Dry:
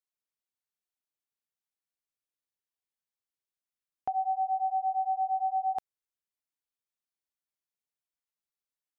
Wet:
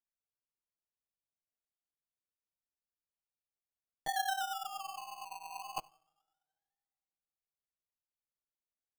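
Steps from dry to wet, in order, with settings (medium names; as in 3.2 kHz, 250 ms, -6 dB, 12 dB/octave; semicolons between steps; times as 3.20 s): low-pass 1.1 kHz 12 dB/octave; monotone LPC vocoder at 8 kHz 160 Hz; two-slope reverb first 0.6 s, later 2.2 s, from -19 dB, DRR 19 dB; decimation with a swept rate 19×, swing 60% 0.23 Hz; trim -3.5 dB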